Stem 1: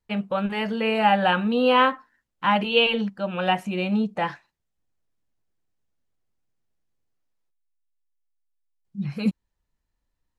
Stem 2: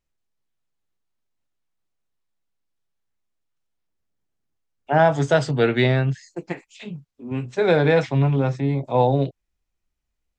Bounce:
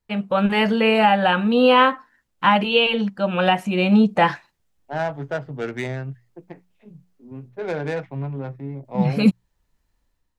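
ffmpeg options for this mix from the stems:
ffmpeg -i stem1.wav -i stem2.wav -filter_complex "[0:a]volume=1.5dB[link_01];[1:a]bandreject=frequency=60:width_type=h:width=6,bandreject=frequency=120:width_type=h:width=6,bandreject=frequency=180:width_type=h:width=6,adynamicequalizer=threshold=0.0178:dfrequency=2100:dqfactor=0.81:tfrequency=2100:tqfactor=0.81:attack=5:release=100:ratio=0.375:range=2.5:mode=boostabove:tftype=bell,adynamicsmooth=sensitivity=0.5:basefreq=960,volume=-17.5dB[link_02];[link_01][link_02]amix=inputs=2:normalize=0,dynaudnorm=framelen=110:gausssize=7:maxgain=8dB,alimiter=limit=-6dB:level=0:latency=1:release=413" out.wav

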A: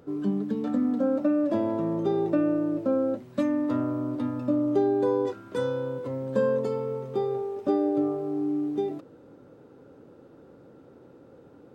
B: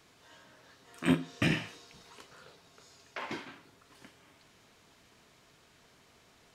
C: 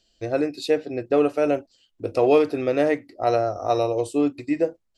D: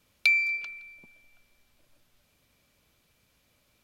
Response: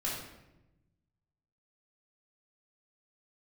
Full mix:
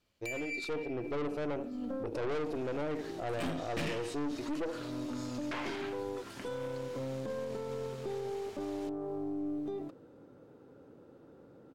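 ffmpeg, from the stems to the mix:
-filter_complex "[0:a]acompressor=threshold=-28dB:ratio=6,adelay=900,volume=-13.5dB[link_01];[1:a]adelay=2350,volume=0dB[link_02];[2:a]equalizer=frequency=340:width=0.59:gain=9,volume=-16dB,asplit=3[link_03][link_04][link_05];[link_04]volume=-18dB[link_06];[3:a]highshelf=frequency=6100:gain=-10.5,asoftclip=type=tanh:threshold=-27dB,volume=-6dB[link_07];[link_05]apad=whole_len=557542[link_08];[link_01][link_08]sidechaincompress=threshold=-39dB:ratio=8:attack=16:release=308[link_09];[link_06]aecho=0:1:72|144|216|288:1|0.3|0.09|0.027[link_10];[link_09][link_02][link_03][link_07][link_10]amix=inputs=5:normalize=0,dynaudnorm=framelen=110:gausssize=11:maxgain=11dB,aeval=exprs='(tanh(14.1*val(0)+0.55)-tanh(0.55))/14.1':channel_layout=same,alimiter=level_in=5dB:limit=-24dB:level=0:latency=1:release=39,volume=-5dB"

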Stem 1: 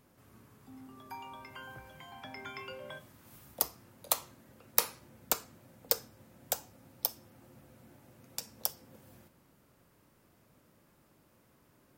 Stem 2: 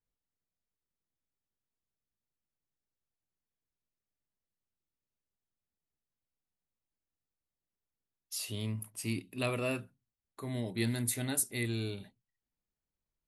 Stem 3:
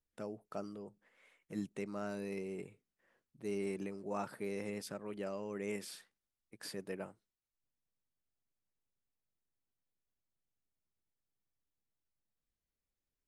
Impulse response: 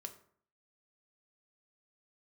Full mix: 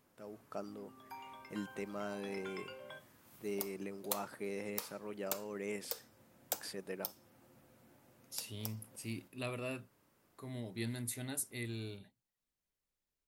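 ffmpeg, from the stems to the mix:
-filter_complex "[0:a]volume=-4.5dB[link_01];[1:a]volume=-7.5dB[link_02];[2:a]dynaudnorm=framelen=210:gausssize=3:maxgain=10dB,volume=-9.5dB[link_03];[link_01][link_03]amix=inputs=2:normalize=0,lowshelf=frequency=170:gain=-7.5,alimiter=limit=-18.5dB:level=0:latency=1:release=220,volume=0dB[link_04];[link_02][link_04]amix=inputs=2:normalize=0"

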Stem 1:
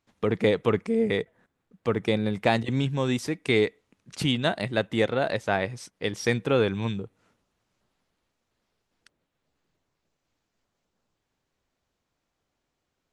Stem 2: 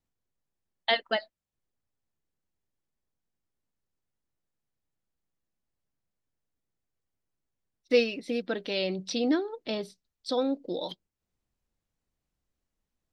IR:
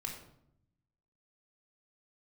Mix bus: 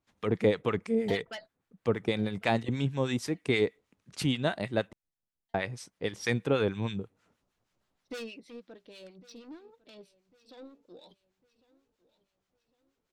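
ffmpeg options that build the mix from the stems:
-filter_complex "[0:a]volume=-1dB,asplit=3[link_01][link_02][link_03];[link_01]atrim=end=4.93,asetpts=PTS-STARTPTS,afade=type=out:start_time=4.926:duration=0.004:curve=hsin[link_04];[link_02]atrim=start=4.93:end=5.54,asetpts=PTS-STARTPTS,volume=0[link_05];[link_03]atrim=start=5.54,asetpts=PTS-STARTPTS,afade=type=in:duration=0.004:curve=hsin[link_06];[link_04][link_05][link_06]concat=n=3:v=0:a=1[link_07];[1:a]asoftclip=type=tanh:threshold=-26dB,adelay=200,volume=-4.5dB,afade=type=out:start_time=8.13:duration=0.58:silence=0.316228,asplit=2[link_08][link_09];[link_09]volume=-21dB,aecho=0:1:1102|2204|3306|4408|5510|6612:1|0.41|0.168|0.0689|0.0283|0.0116[link_10];[link_07][link_08][link_10]amix=inputs=3:normalize=0,acrossover=split=1000[link_11][link_12];[link_11]aeval=exprs='val(0)*(1-0.7/2+0.7/2*cos(2*PI*6.3*n/s))':channel_layout=same[link_13];[link_12]aeval=exprs='val(0)*(1-0.7/2-0.7/2*cos(2*PI*6.3*n/s))':channel_layout=same[link_14];[link_13][link_14]amix=inputs=2:normalize=0"

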